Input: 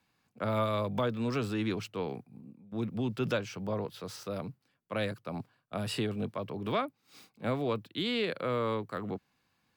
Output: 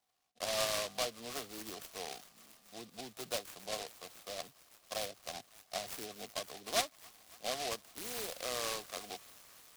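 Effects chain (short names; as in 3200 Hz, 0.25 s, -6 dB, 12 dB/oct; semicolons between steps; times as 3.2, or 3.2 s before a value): spectral gate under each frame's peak -30 dB strong; vowel filter a; high shelf 2800 Hz +10.5 dB; thin delay 0.279 s, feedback 84%, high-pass 2800 Hz, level -8 dB; noise-modulated delay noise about 3700 Hz, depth 0.18 ms; gain +4 dB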